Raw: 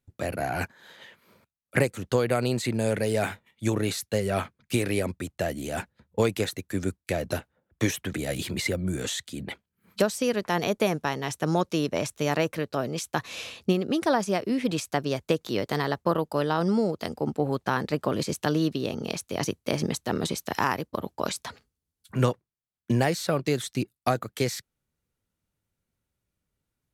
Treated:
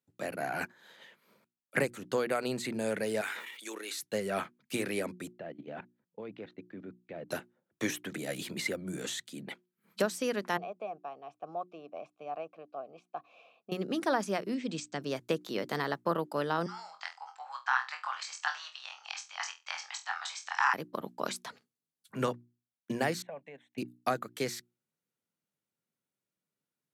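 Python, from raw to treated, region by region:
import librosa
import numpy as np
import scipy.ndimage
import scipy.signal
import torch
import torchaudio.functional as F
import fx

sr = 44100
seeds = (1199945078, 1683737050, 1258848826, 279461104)

y = fx.chain(x, sr, fx.highpass(hz=400.0, slope=24),
    fx.peak_eq(hz=630.0, db=-13.5, octaves=1.2),
    fx.sustainer(db_per_s=28.0), at=(3.21, 3.98))
y = fx.chain(y, sr, fx.lowpass(hz=3500.0, slope=24),
    fx.high_shelf(hz=2100.0, db=-8.5),
    fx.level_steps(step_db=17), at=(5.33, 7.29))
y = fx.chain(y, sr, fx.vowel_filter(vowel='a'),
    fx.tilt_eq(slope=-2.5), at=(10.57, 13.72))
y = fx.chain(y, sr, fx.brickwall_lowpass(high_hz=8600.0),
    fx.peak_eq(hz=930.0, db=-7.5, octaves=2.3), at=(14.54, 15.01))
y = fx.chain(y, sr, fx.cheby1_bandpass(low_hz=790.0, high_hz=7800.0, order=5),
    fx.peak_eq(hz=1600.0, db=5.0, octaves=0.9),
    fx.room_flutter(wall_m=4.1, rt60_s=0.25), at=(16.66, 20.74))
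y = fx.chain(y, sr, fx.level_steps(step_db=15),
    fx.bandpass_edges(low_hz=280.0, high_hz=2100.0),
    fx.fixed_phaser(hz=1300.0, stages=6), at=(23.22, 23.78))
y = scipy.signal.sosfilt(scipy.signal.butter(4, 150.0, 'highpass', fs=sr, output='sos'), y)
y = fx.hum_notches(y, sr, base_hz=60, count=6)
y = fx.dynamic_eq(y, sr, hz=1500.0, q=1.3, threshold_db=-39.0, ratio=4.0, max_db=4)
y = y * 10.0 ** (-6.5 / 20.0)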